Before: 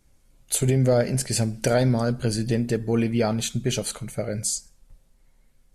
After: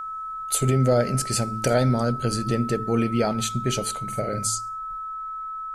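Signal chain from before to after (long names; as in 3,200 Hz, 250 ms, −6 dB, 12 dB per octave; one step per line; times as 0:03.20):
0:04.03–0:04.47: double-tracking delay 46 ms −5 dB
steady tone 1,300 Hz −30 dBFS
hum removal 54.93 Hz, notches 8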